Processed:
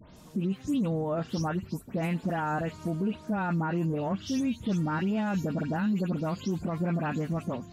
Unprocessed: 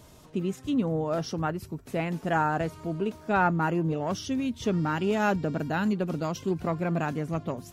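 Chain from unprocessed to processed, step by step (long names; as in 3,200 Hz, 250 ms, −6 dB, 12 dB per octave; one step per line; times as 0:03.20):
every frequency bin delayed by itself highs late, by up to 162 ms
parametric band 200 Hz +8.5 dB 0.41 octaves
brickwall limiter −22 dBFS, peak gain reduction 10.5 dB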